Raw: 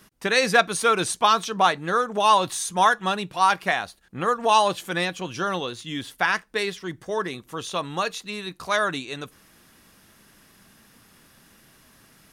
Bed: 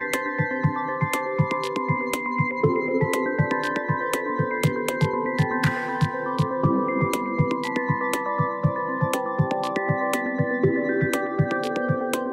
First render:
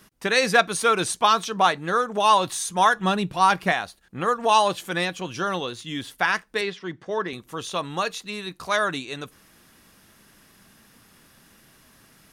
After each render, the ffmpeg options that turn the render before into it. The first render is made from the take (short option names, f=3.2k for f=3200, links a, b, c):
-filter_complex "[0:a]asettb=1/sr,asplit=3[a][b][c];[a]atrim=end=2.964[d];[b]atrim=start=2.96:end=3.73,asetpts=PTS-STARTPTS,afade=t=in:d=0.004:c=qsin,afade=t=out:st=0.766:d=0.004:c=qsin,lowshelf=f=300:g=10[e];[c]atrim=start=3.726[f];[d][e]acrossfade=d=0.004:c1=hsin:c2=qsin[g];[g][f]acrossfade=d=0.004:c1=qsin:c2=hsin,asettb=1/sr,asplit=3[h][i][j];[h]atrim=end=6.614[k];[i]atrim=start=6.61:end=7.33,asetpts=PTS-STARTPTS,afade=t=in:d=0.004:c=qsin,afade=t=out:st=0.716:d=0.004:c=qsin,highpass=130,lowpass=4.3k[l];[j]atrim=start=7.326[m];[k][l]acrossfade=d=0.004:c1=hsin:c2=qsin[n];[n][m]acrossfade=d=0.004:c1=qsin:c2=hsin"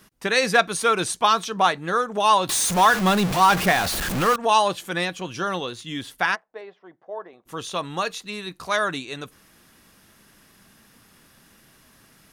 -filter_complex "[0:a]asettb=1/sr,asplit=3[a][b][c];[a]atrim=end=2.494[d];[b]atrim=start=2.49:end=4.36,asetpts=PTS-STARTPTS,afade=t=in:d=0.004:c=qsin,afade=t=out:st=1.866:d=0.004:c=qsin,aeval=exprs='val(0)+0.5*0.0944*sgn(val(0))':c=same[e];[c]atrim=start=4.356[f];[d][e]acrossfade=d=0.004:c1=hsin:c2=qsin[g];[g][f]acrossfade=d=0.004:c1=qsin:c2=hsin,asplit=3[h][i][j];[h]afade=t=out:st=6.34:d=0.02[k];[i]bandpass=f=690:t=q:w=3.2,afade=t=in:st=6.34:d=0.02,afade=t=out:st=7.45:d=0.02[l];[j]afade=t=in:st=7.45:d=0.02[m];[k][l][m]amix=inputs=3:normalize=0"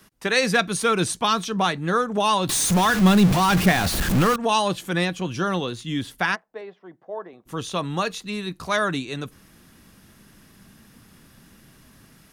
-filter_complex "[0:a]acrossover=split=300|1600[a][b][c];[a]dynaudnorm=f=320:g=3:m=8dB[d];[b]alimiter=limit=-15dB:level=0:latency=1:release=254[e];[d][e][c]amix=inputs=3:normalize=0"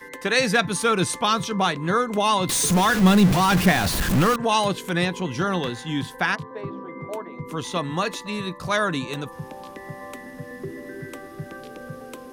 -filter_complex "[1:a]volume=-13.5dB[a];[0:a][a]amix=inputs=2:normalize=0"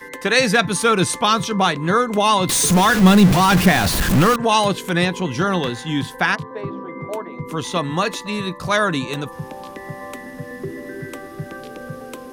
-af "volume=4.5dB,alimiter=limit=-2dB:level=0:latency=1"